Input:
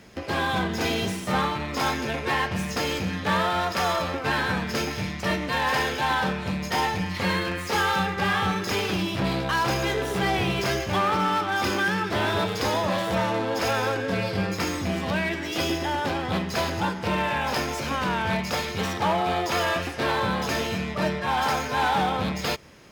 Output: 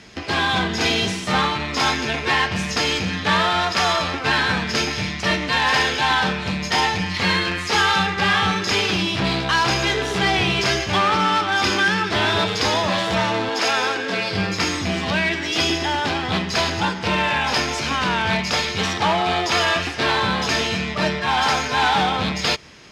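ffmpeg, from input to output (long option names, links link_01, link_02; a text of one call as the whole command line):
ffmpeg -i in.wav -filter_complex "[0:a]asettb=1/sr,asplit=3[link_01][link_02][link_03];[link_01]atrim=end=13.494[link_04];[link_02]atrim=start=13.49:end=14.31,asetpts=PTS-STARTPTS,afade=type=in:duration=0.004:curve=qsin,afade=type=out:start_time=0.816:duration=0.004:curve=qsin,highpass=250[link_05];[link_03]atrim=start=14.306[link_06];[link_04][link_05]acrossfade=duration=0.004:curve1=hsin:curve2=qsin[link_07];[link_07][link_06]acrossfade=duration=0.004:curve1=qsin:curve2=hsin,lowpass=5200,highshelf=frequency=2500:gain=11.5,bandreject=frequency=540:width=12,volume=3dB" out.wav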